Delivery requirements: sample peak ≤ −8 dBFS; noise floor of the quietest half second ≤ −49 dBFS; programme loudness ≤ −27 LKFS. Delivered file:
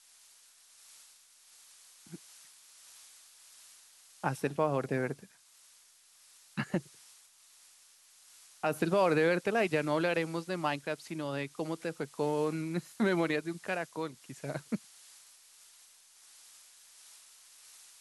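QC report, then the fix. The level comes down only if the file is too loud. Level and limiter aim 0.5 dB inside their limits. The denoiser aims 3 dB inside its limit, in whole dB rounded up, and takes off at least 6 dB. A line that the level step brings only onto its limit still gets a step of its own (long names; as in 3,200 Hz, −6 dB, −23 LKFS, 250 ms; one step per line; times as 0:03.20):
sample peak −15.5 dBFS: in spec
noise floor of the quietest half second −62 dBFS: in spec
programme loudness −33.0 LKFS: in spec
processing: no processing needed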